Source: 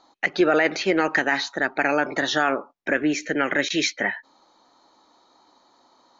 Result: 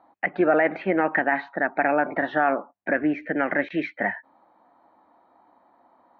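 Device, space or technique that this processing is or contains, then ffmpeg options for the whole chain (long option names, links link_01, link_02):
bass cabinet: -af "highpass=63,equalizer=frequency=92:width_type=q:width=4:gain=7,equalizer=frequency=130:width_type=q:width=4:gain=-7,equalizer=frequency=190:width_type=q:width=4:gain=3,equalizer=frequency=410:width_type=q:width=4:gain=-6,equalizer=frequency=700:width_type=q:width=4:gain=5,equalizer=frequency=1300:width_type=q:width=4:gain=-4,lowpass=frequency=2000:width=0.5412,lowpass=frequency=2000:width=1.3066"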